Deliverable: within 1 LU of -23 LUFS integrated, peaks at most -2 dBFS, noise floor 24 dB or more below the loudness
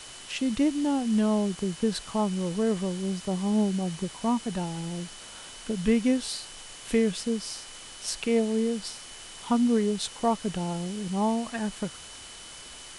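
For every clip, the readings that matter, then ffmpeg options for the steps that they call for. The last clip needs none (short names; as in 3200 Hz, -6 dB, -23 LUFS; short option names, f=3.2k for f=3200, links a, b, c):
steady tone 3000 Hz; tone level -49 dBFS; noise floor -45 dBFS; noise floor target -52 dBFS; loudness -28.0 LUFS; peak -12.5 dBFS; loudness target -23.0 LUFS
-> -af "bandreject=f=3k:w=30"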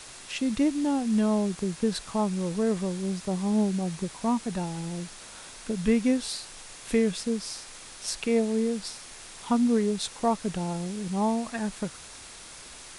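steady tone none; noise floor -45 dBFS; noise floor target -52 dBFS
-> -af "afftdn=nr=7:nf=-45"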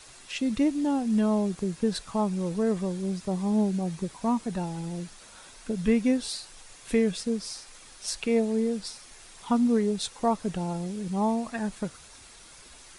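noise floor -50 dBFS; noise floor target -52 dBFS
-> -af "afftdn=nr=6:nf=-50"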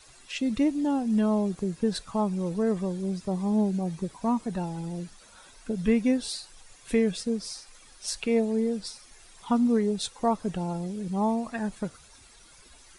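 noise floor -54 dBFS; loudness -28.5 LUFS; peak -12.5 dBFS; loudness target -23.0 LUFS
-> -af "volume=5.5dB"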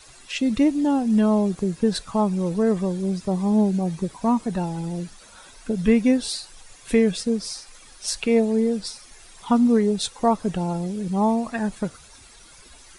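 loudness -23.0 LUFS; peak -7.0 dBFS; noise floor -48 dBFS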